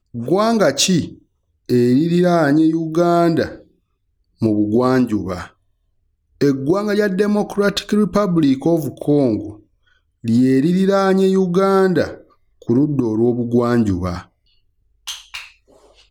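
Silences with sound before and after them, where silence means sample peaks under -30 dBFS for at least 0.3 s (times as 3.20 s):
1.14–1.69 s
3.56–4.41 s
5.46–6.41 s
9.52–10.24 s
12.15–12.62 s
14.22–15.07 s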